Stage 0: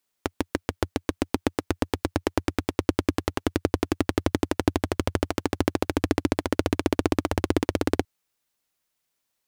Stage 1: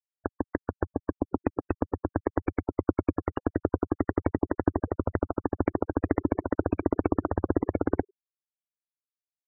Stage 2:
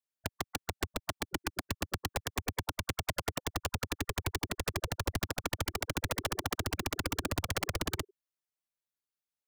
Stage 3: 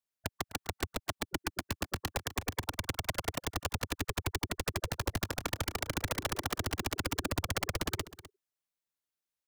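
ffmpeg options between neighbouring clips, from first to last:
-filter_complex "[0:a]asplit=6[a][b][c][d][e][f];[b]adelay=101,afreqshift=83,volume=-22dB[g];[c]adelay=202,afreqshift=166,volume=-25.7dB[h];[d]adelay=303,afreqshift=249,volume=-29.5dB[i];[e]adelay=404,afreqshift=332,volume=-33.2dB[j];[f]adelay=505,afreqshift=415,volume=-37dB[k];[a][g][h][i][j][k]amix=inputs=6:normalize=0,afftfilt=real='re*gte(hypot(re,im),0.0708)':imag='im*gte(hypot(re,im),0.0708)':win_size=1024:overlap=0.75,volume=-2dB"
-af "aeval=exprs='(mod(15*val(0)+1,2)-1)/15':c=same"
-af "aecho=1:1:254:0.15"

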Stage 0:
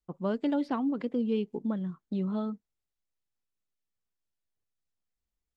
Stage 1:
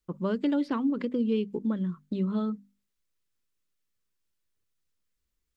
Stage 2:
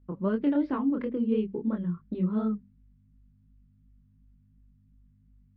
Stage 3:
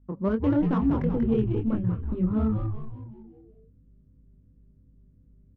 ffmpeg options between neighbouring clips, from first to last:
-filter_complex "[0:a]equalizer=f=740:t=o:w=0.43:g=-12,asplit=2[a][b];[b]acompressor=threshold=-36dB:ratio=6,volume=1dB[c];[a][c]amix=inputs=2:normalize=0,bandreject=f=50:t=h:w=6,bandreject=f=100:t=h:w=6,bandreject=f=150:t=h:w=6,bandreject=f=200:t=h:w=6,bandreject=f=250:t=h:w=6"
-af "aeval=exprs='val(0)+0.00126*(sin(2*PI*50*n/s)+sin(2*PI*2*50*n/s)/2+sin(2*PI*3*50*n/s)/3+sin(2*PI*4*50*n/s)/4+sin(2*PI*5*50*n/s)/5)':c=same,flanger=delay=22.5:depth=6.8:speed=2.8,lowpass=2k,volume=3dB"
-filter_complex "[0:a]adynamicsmooth=sensitivity=4:basefreq=1.8k,asplit=2[a][b];[b]asplit=6[c][d][e][f][g][h];[c]adelay=187,afreqshift=-110,volume=-4dB[i];[d]adelay=374,afreqshift=-220,volume=-10.2dB[j];[e]adelay=561,afreqshift=-330,volume=-16.4dB[k];[f]adelay=748,afreqshift=-440,volume=-22.6dB[l];[g]adelay=935,afreqshift=-550,volume=-28.8dB[m];[h]adelay=1122,afreqshift=-660,volume=-35dB[n];[i][j][k][l][m][n]amix=inputs=6:normalize=0[o];[a][o]amix=inputs=2:normalize=0,volume=2dB"

